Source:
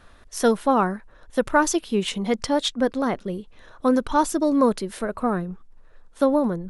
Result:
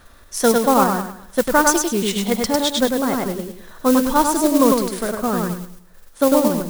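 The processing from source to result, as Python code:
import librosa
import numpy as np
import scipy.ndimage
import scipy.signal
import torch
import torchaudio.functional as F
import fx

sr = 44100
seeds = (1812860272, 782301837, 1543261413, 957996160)

p1 = fx.peak_eq(x, sr, hz=2800.0, db=-3.5, octaves=0.43)
p2 = p1 + fx.echo_feedback(p1, sr, ms=101, feedback_pct=35, wet_db=-3, dry=0)
p3 = fx.mod_noise(p2, sr, seeds[0], snr_db=18)
p4 = fx.level_steps(p3, sr, step_db=9)
p5 = p3 + (p4 * librosa.db_to_amplitude(2.0))
p6 = fx.high_shelf(p5, sr, hz=4300.0, db=5.5)
y = p6 * librosa.db_to_amplitude(-3.0)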